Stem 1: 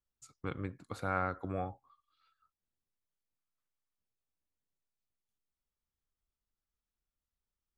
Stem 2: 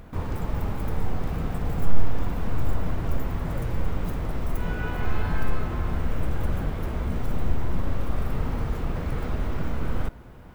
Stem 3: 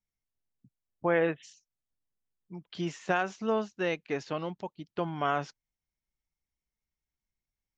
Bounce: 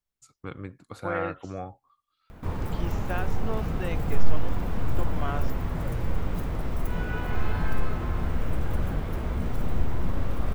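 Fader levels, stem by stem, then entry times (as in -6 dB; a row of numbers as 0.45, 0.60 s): +1.0, -1.0, -5.5 dB; 0.00, 2.30, 0.00 s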